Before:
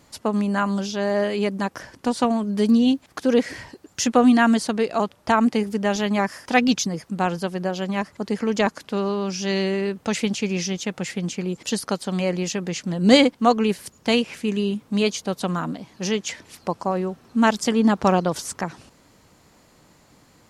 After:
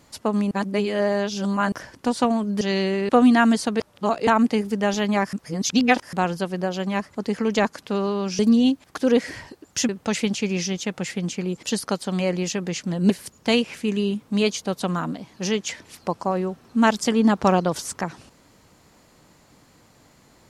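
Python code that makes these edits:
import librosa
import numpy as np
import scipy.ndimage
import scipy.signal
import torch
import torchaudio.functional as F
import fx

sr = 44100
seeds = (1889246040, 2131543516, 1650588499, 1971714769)

y = fx.edit(x, sr, fx.reverse_span(start_s=0.51, length_s=1.21),
    fx.swap(start_s=2.61, length_s=1.5, other_s=9.41, other_length_s=0.48),
    fx.reverse_span(start_s=4.82, length_s=0.47),
    fx.reverse_span(start_s=6.35, length_s=0.8),
    fx.cut(start_s=13.1, length_s=0.6), tone=tone)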